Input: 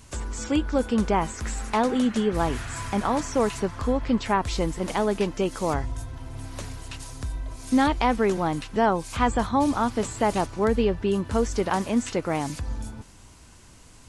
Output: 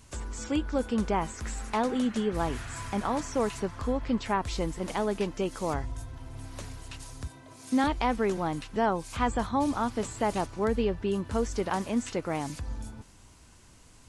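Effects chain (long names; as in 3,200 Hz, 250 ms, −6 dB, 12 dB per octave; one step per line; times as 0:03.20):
0:07.27–0:07.84: high-pass filter 120 Hz 24 dB per octave
level −5 dB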